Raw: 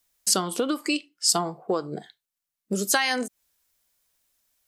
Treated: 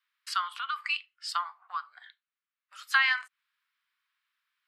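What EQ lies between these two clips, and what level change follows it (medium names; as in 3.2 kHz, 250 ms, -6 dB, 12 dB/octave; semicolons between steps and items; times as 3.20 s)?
steep high-pass 1.1 kHz 48 dB/octave; distance through air 440 m; +6.5 dB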